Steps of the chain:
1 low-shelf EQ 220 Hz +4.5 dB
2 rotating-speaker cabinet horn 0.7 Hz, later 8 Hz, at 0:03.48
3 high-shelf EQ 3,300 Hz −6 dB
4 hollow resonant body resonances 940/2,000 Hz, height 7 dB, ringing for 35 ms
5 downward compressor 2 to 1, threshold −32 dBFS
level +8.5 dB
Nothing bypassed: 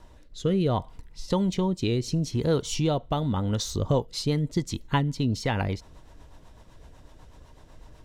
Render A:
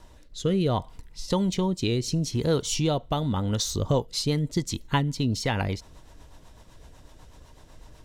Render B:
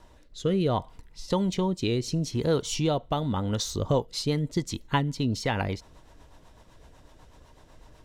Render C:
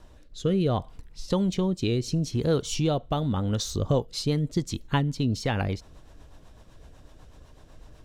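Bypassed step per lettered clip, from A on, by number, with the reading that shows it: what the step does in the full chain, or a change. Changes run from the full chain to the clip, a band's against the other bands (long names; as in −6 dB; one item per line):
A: 3, 8 kHz band +4.5 dB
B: 1, 125 Hz band −3.0 dB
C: 4, 1 kHz band −1.5 dB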